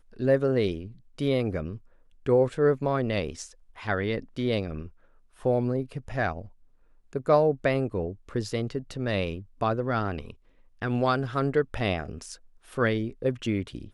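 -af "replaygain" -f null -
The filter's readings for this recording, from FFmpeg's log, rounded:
track_gain = +7.7 dB
track_peak = 0.233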